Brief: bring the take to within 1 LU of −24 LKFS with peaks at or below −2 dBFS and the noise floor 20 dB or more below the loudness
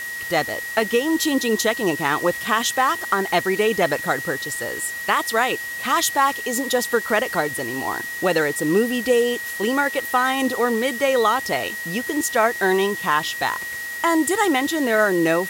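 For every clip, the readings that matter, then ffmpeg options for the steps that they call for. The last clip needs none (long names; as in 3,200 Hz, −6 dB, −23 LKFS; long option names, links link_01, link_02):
interfering tone 1,900 Hz; level of the tone −28 dBFS; background noise floor −30 dBFS; target noise floor −41 dBFS; integrated loudness −21.0 LKFS; sample peak −6.0 dBFS; target loudness −24.0 LKFS
→ -af "bandreject=frequency=1900:width=30"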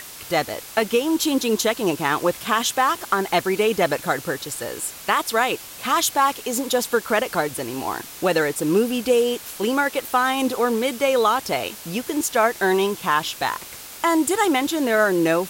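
interfering tone none found; background noise floor −39 dBFS; target noise floor −42 dBFS
→ -af "afftdn=noise_reduction=6:noise_floor=-39"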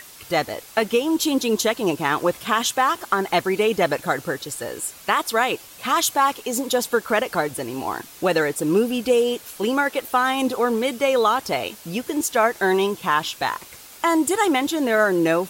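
background noise floor −44 dBFS; integrated loudness −21.5 LKFS; sample peak −6.5 dBFS; target loudness −24.0 LKFS
→ -af "volume=-2.5dB"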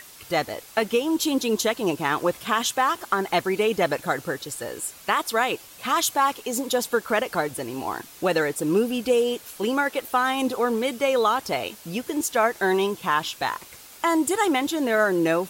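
integrated loudness −24.0 LKFS; sample peak −9.0 dBFS; background noise floor −46 dBFS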